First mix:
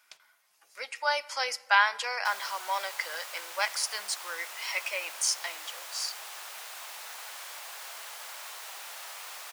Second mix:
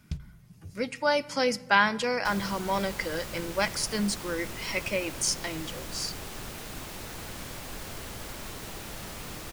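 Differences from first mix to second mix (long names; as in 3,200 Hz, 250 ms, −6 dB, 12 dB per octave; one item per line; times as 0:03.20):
first sound: send −11.0 dB
master: remove high-pass filter 720 Hz 24 dB per octave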